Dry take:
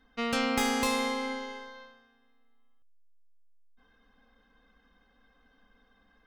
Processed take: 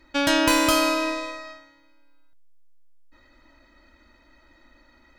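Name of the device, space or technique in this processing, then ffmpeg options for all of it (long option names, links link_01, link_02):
nightcore: -af "asetrate=53361,aresample=44100,volume=8.5dB"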